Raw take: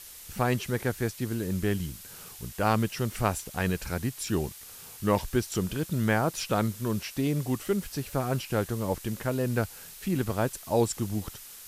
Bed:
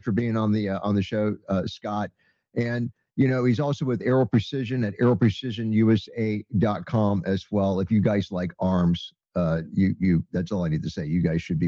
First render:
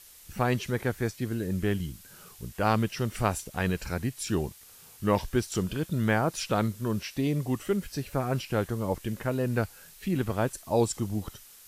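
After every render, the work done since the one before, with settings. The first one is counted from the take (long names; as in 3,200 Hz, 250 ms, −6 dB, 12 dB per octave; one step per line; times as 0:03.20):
noise reduction from a noise print 6 dB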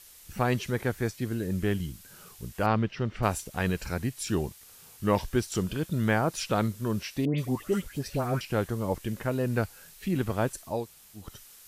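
0:02.66–0:03.23: high-frequency loss of the air 210 metres
0:07.25–0:08.41: all-pass dispersion highs, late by 132 ms, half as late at 1,800 Hz
0:10.76–0:11.25: fill with room tone, crossfade 0.24 s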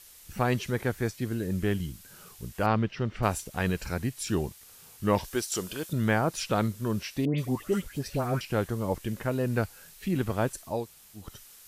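0:05.24–0:05.93: bass and treble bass −12 dB, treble +6 dB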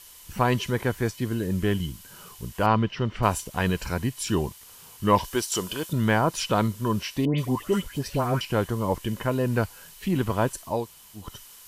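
in parallel at −5.5 dB: soft clipping −18 dBFS, distortion −16 dB
on the sum: hollow resonant body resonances 1,000/3,000 Hz, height 12 dB, ringing for 40 ms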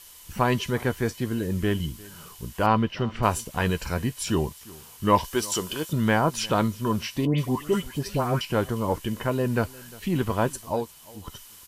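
double-tracking delay 13 ms −13.5 dB
single-tap delay 353 ms −22 dB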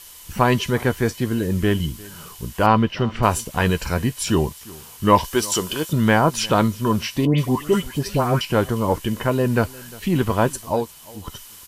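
level +5.5 dB
brickwall limiter −3 dBFS, peak gain reduction 1.5 dB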